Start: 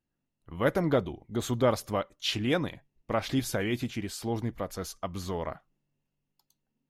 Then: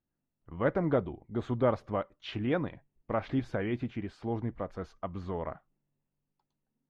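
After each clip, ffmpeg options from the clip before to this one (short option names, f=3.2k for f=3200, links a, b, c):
-af "lowpass=1.8k,volume=-2dB"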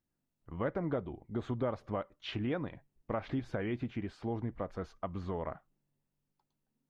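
-af "acompressor=threshold=-32dB:ratio=3"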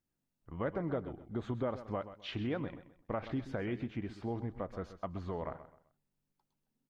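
-af "aecho=1:1:129|258|387:0.224|0.0672|0.0201,volume=-1.5dB"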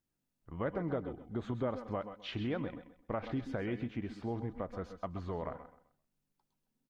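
-af "aecho=1:1:133:0.224"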